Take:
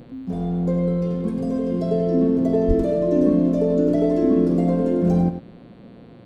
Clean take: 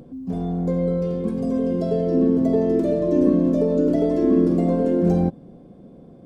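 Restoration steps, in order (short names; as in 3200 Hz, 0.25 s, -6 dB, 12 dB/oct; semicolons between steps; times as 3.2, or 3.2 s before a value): de-hum 116 Hz, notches 39; 2.67–2.79 HPF 140 Hz 24 dB/oct; inverse comb 98 ms -10.5 dB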